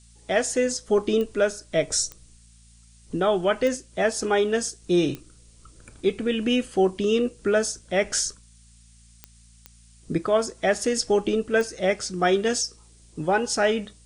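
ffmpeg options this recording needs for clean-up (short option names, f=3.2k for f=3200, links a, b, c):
-af "adeclick=t=4,bandreject=f=57:t=h:w=4,bandreject=f=114:t=h:w=4,bandreject=f=171:t=h:w=4,bandreject=f=228:t=h:w=4,afftdn=nr=16:nf=-53"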